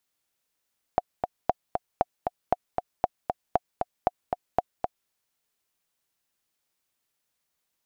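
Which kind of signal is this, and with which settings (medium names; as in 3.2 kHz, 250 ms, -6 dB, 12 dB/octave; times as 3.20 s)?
metronome 233 bpm, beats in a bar 2, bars 8, 723 Hz, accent 5 dB -7.5 dBFS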